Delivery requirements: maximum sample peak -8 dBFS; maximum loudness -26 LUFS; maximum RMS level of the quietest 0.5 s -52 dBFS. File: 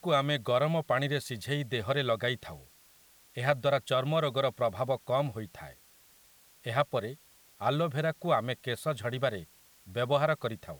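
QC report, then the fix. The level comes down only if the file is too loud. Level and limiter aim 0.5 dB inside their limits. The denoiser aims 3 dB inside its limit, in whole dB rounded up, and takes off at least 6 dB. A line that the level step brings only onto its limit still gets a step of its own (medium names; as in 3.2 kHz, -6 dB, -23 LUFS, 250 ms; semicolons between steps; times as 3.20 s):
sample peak -11.5 dBFS: pass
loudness -30.5 LUFS: pass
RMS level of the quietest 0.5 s -60 dBFS: pass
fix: none needed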